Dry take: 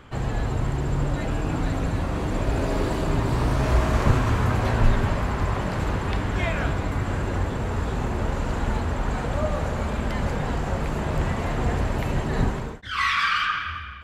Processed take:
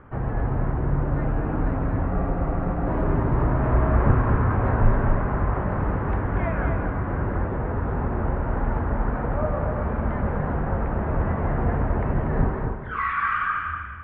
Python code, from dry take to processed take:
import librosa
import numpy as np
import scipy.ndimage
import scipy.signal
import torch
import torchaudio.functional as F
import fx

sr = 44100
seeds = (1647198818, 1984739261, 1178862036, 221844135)

p1 = scipy.signal.sosfilt(scipy.signal.butter(4, 1700.0, 'lowpass', fs=sr, output='sos'), x)
p2 = p1 + fx.echo_single(p1, sr, ms=239, db=-6.0, dry=0)
y = fx.spec_freeze(p2, sr, seeds[0], at_s=2.11, hold_s=0.76)